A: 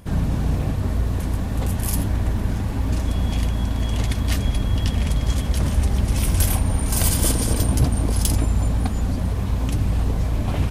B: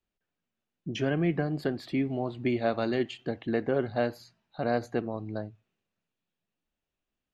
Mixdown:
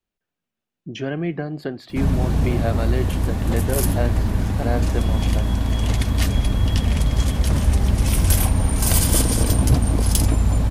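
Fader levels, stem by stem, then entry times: +2.0, +2.0 decibels; 1.90, 0.00 seconds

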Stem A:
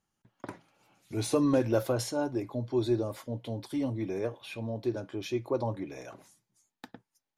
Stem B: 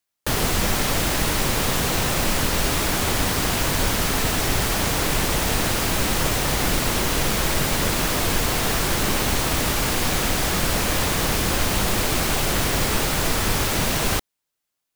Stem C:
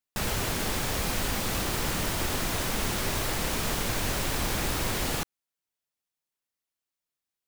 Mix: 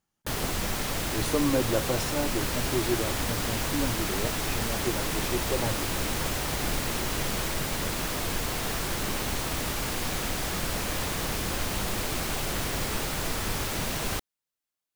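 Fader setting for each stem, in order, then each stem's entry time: −0.5, −8.5, −8.5 decibels; 0.00, 0.00, 2.25 seconds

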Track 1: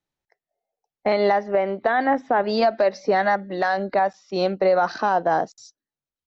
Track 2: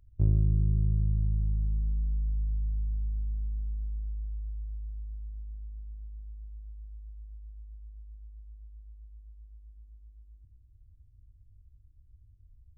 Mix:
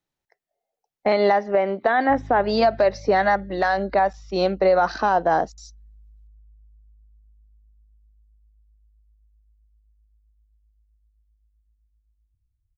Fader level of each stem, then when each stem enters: +1.0, −15.0 decibels; 0.00, 1.90 seconds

